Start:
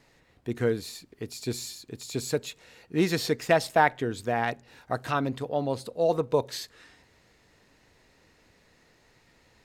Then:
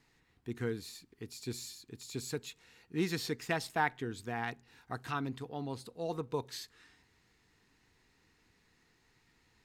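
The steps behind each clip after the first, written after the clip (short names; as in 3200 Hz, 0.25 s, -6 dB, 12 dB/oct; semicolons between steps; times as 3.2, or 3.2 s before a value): bell 580 Hz -14.5 dB 0.4 oct; gain -7.5 dB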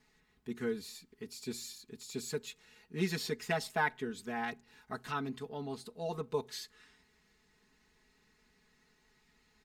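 comb 4.7 ms, depth 90%; gain -2.5 dB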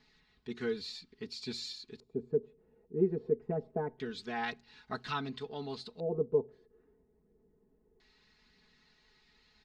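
LFO low-pass square 0.25 Hz 460–4300 Hz; phaser 0.81 Hz, delay 2.8 ms, feedback 23%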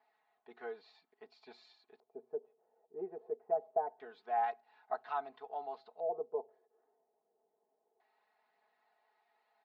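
ladder band-pass 770 Hz, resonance 75%; gain +8.5 dB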